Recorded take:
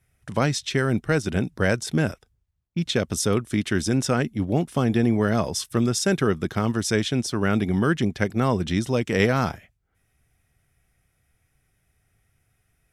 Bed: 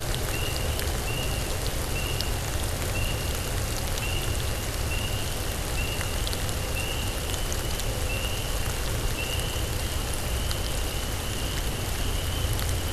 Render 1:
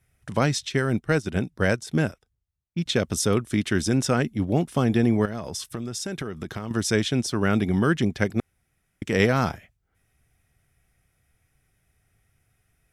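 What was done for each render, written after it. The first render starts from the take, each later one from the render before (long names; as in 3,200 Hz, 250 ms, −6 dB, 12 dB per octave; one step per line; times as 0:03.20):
0:00.68–0:02.86: expander for the loud parts, over −35 dBFS
0:05.25–0:06.71: downward compressor 10 to 1, threshold −27 dBFS
0:08.40–0:09.02: fill with room tone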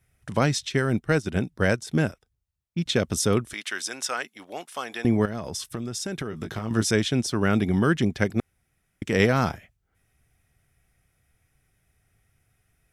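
0:03.53–0:05.05: high-pass filter 910 Hz
0:06.30–0:06.91: double-tracking delay 18 ms −5.5 dB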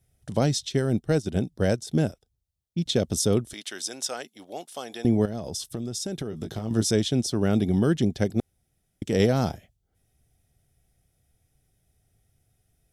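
flat-topped bell 1,600 Hz −10 dB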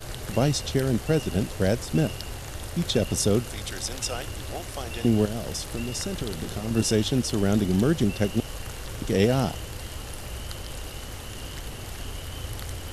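mix in bed −7.5 dB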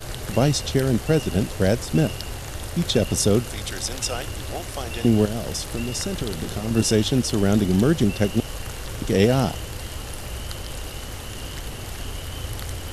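level +3.5 dB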